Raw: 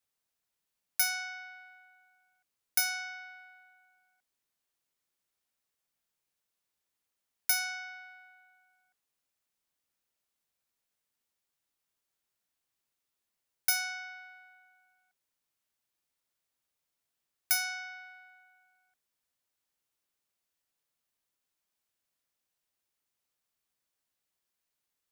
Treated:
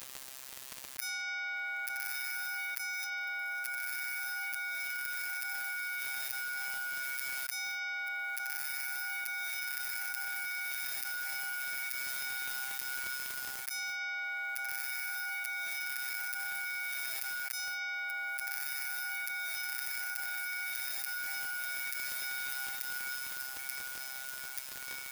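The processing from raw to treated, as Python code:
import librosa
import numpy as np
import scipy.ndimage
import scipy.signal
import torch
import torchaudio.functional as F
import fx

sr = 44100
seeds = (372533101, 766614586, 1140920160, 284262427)

y = fx.low_shelf(x, sr, hz=410.0, db=-9.5)
y = fx.rider(y, sr, range_db=10, speed_s=0.5)
y = fx.gate_flip(y, sr, shuts_db=-31.0, range_db=-31)
y = fx.echo_wet_highpass(y, sr, ms=884, feedback_pct=72, hz=2100.0, wet_db=-16.5)
y = fx.robotise(y, sr, hz=132.0)
y = fx.echo_diffused(y, sr, ms=1312, feedback_pct=54, wet_db=-13.5)
y = fx.dmg_crackle(y, sr, seeds[0], per_s=27.0, level_db=-68.0)
y = fx.env_flatten(y, sr, amount_pct=100)
y = y * 10.0 ** (2.0 / 20.0)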